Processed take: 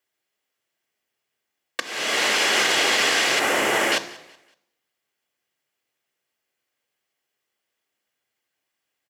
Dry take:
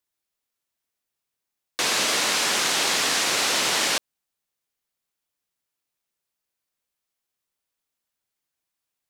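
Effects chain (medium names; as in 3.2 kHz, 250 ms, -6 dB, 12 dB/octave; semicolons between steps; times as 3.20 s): 1.80–2.46 s: fade in; 3.39–3.92 s: peaking EQ 4.3 kHz -13.5 dB 1.5 oct; peak limiter -16.5 dBFS, peak gain reduction 5.5 dB; feedback delay 187 ms, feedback 37%, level -22 dB; reverberation RT60 0.85 s, pre-delay 3 ms, DRR 11 dB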